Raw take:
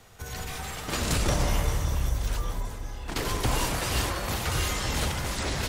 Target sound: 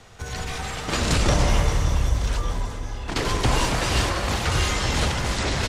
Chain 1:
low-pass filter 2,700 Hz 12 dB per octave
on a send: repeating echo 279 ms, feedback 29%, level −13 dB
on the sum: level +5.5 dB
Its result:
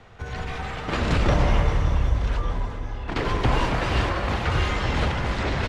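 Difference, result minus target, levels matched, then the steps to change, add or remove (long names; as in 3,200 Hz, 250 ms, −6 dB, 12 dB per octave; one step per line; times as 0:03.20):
8,000 Hz band −13.5 dB
change: low-pass filter 7,400 Hz 12 dB per octave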